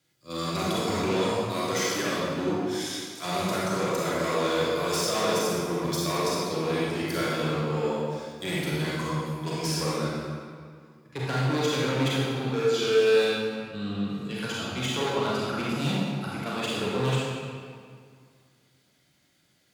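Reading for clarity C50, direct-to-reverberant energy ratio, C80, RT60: -4.0 dB, -7.0 dB, -1.0 dB, 2.1 s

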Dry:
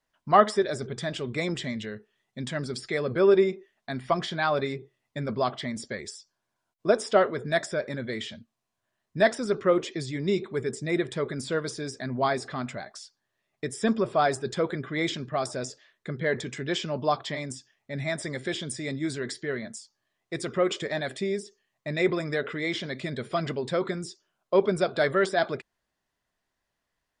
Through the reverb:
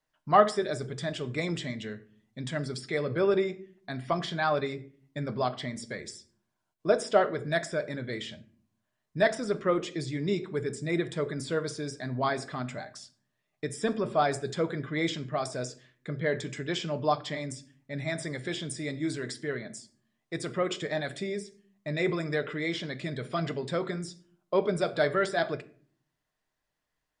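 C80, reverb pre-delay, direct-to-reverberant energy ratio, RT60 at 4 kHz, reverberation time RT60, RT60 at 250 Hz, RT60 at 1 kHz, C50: 21.5 dB, 7 ms, 9.5 dB, 0.30 s, 0.50 s, 0.80 s, 0.40 s, 17.5 dB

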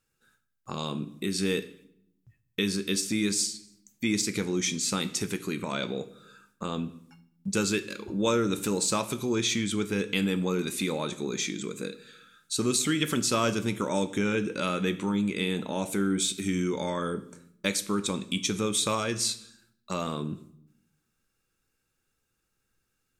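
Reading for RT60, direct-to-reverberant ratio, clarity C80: 0.70 s, 11.0 dB, 19.0 dB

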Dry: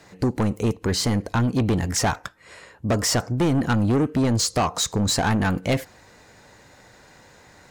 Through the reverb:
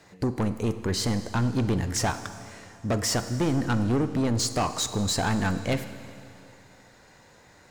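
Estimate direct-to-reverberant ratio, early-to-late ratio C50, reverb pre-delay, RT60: 10.5 dB, 11.0 dB, 32 ms, 2.6 s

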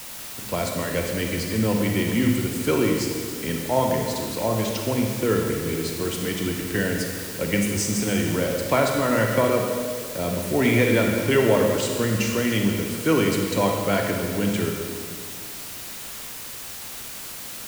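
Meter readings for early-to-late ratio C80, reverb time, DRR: 4.0 dB, 2.1 s, 1.5 dB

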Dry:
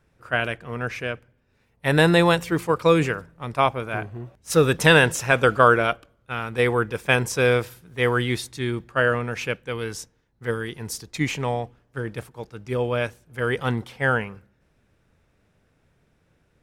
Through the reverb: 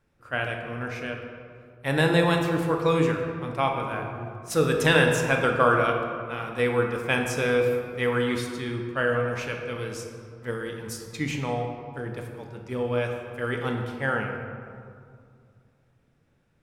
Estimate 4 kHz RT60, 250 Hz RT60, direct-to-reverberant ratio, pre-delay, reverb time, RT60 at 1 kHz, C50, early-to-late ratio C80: 1.2 s, 2.6 s, 2.0 dB, 4 ms, 2.3 s, 2.2 s, 4.0 dB, 5.5 dB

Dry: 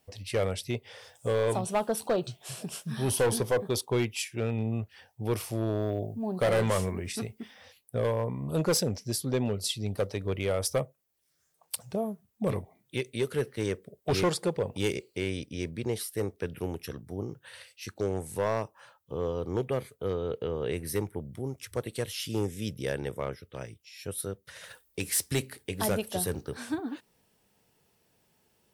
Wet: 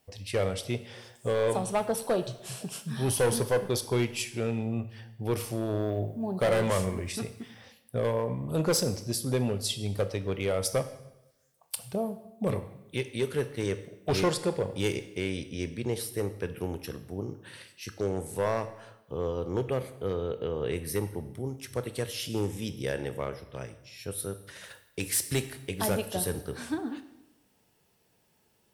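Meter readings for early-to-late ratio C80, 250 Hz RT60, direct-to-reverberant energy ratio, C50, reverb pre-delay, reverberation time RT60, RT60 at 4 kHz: 15.5 dB, 1.0 s, 10.5 dB, 13.5 dB, 17 ms, 0.90 s, 0.80 s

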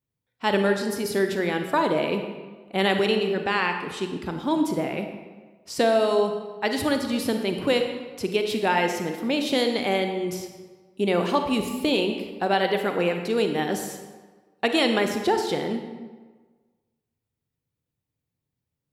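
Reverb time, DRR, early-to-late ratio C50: 1.4 s, 5.0 dB, 6.5 dB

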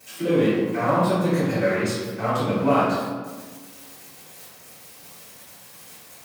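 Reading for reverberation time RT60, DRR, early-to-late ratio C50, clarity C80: 1.5 s, -16.0 dB, -1.5 dB, 1.5 dB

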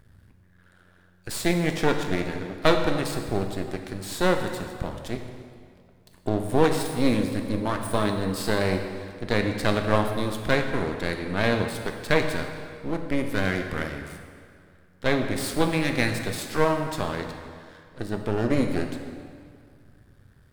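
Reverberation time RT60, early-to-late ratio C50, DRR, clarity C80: 2.1 s, 6.0 dB, 4.5 dB, 7.5 dB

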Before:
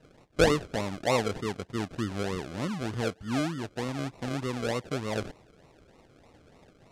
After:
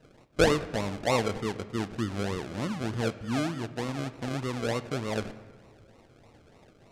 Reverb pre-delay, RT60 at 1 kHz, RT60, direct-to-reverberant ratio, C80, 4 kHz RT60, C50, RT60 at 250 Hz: 9 ms, 1.5 s, 1.6 s, 12.0 dB, 16.0 dB, 1.0 s, 14.5 dB, 2.1 s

